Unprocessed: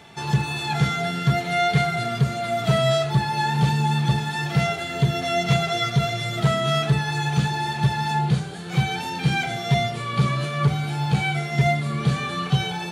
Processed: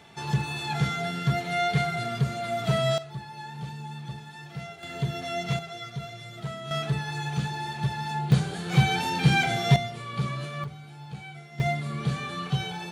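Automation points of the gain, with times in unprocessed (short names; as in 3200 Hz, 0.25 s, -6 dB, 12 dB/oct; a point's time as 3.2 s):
-5 dB
from 2.98 s -17 dB
from 4.83 s -8.5 dB
from 5.59 s -15 dB
from 6.71 s -7.5 dB
from 8.32 s +1 dB
from 9.76 s -8.5 dB
from 10.64 s -18.5 dB
from 11.6 s -6.5 dB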